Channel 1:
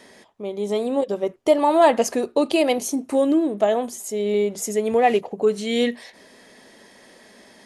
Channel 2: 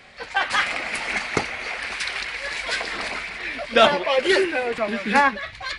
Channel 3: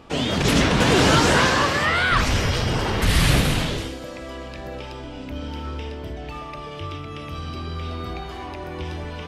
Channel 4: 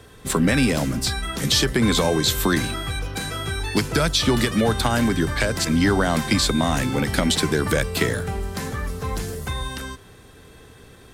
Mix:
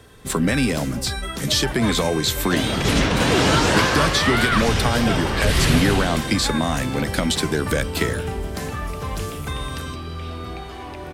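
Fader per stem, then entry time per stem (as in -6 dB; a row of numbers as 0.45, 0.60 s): -18.0, -13.5, -1.0, -1.0 dB; 0.00, 1.30, 2.40, 0.00 s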